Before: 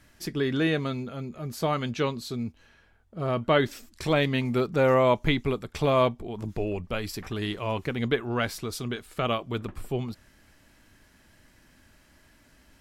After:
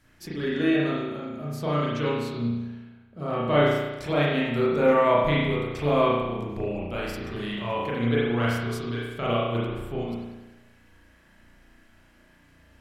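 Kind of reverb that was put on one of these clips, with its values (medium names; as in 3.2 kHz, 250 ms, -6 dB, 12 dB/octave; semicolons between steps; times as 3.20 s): spring tank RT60 1.1 s, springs 34 ms, chirp 65 ms, DRR -7 dB; trim -6 dB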